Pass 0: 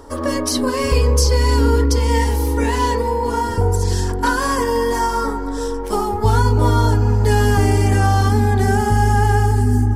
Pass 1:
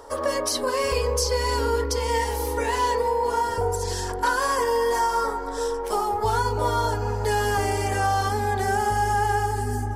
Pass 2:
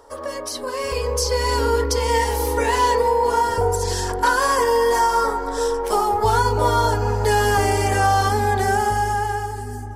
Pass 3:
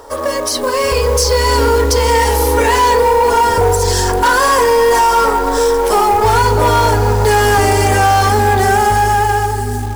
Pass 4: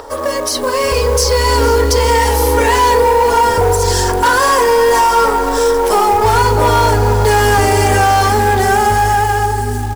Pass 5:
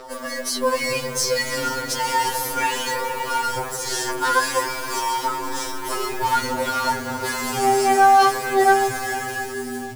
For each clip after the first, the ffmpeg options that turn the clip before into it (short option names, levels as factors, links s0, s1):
-filter_complex "[0:a]lowshelf=f=370:t=q:w=1.5:g=-10,asplit=2[s0][s1];[s1]alimiter=limit=0.178:level=0:latency=1:release=260,volume=1[s2];[s0][s2]amix=inputs=2:normalize=0,volume=0.398"
-af "dynaudnorm=f=130:g=17:m=3.76,volume=0.596"
-filter_complex "[0:a]asplit=2[s0][s1];[s1]alimiter=limit=0.15:level=0:latency=1,volume=1[s2];[s0][s2]amix=inputs=2:normalize=0,acrusher=bits=4:mode=log:mix=0:aa=0.000001,asoftclip=type=tanh:threshold=0.266,volume=2"
-filter_complex "[0:a]acrossover=split=6100[s0][s1];[s0]acompressor=mode=upward:threshold=0.0447:ratio=2.5[s2];[s2][s1]amix=inputs=2:normalize=0,aecho=1:1:465:0.178"
-af "afftfilt=real='re*2.45*eq(mod(b,6),0)':imag='im*2.45*eq(mod(b,6),0)':win_size=2048:overlap=0.75,volume=0.596"